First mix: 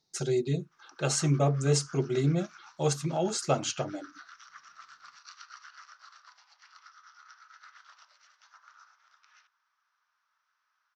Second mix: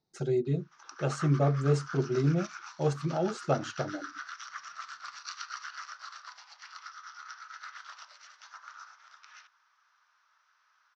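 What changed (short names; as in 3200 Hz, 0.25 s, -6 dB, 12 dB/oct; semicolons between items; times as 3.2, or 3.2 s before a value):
speech: add LPF 1100 Hz 6 dB/oct; background +8.5 dB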